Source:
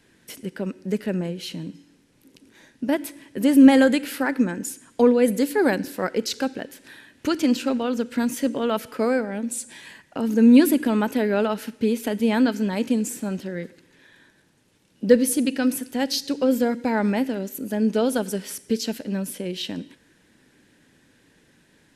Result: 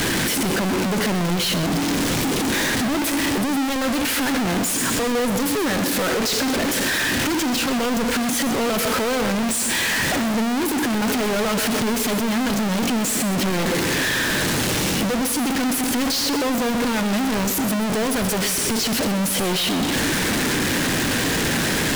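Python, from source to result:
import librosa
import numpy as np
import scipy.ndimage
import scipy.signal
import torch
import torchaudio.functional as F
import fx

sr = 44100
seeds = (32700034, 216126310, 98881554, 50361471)

p1 = np.sign(x) * np.sqrt(np.mean(np.square(x)))
p2 = fx.high_shelf(p1, sr, hz=11000.0, db=-4.5)
p3 = p2 + fx.echo_single(p2, sr, ms=128, db=-12.0, dry=0)
y = p3 * librosa.db_to_amplitude(2.0)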